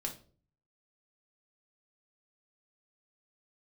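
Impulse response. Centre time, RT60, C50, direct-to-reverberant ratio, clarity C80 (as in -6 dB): 14 ms, 0.45 s, 11.0 dB, 0.5 dB, 17.0 dB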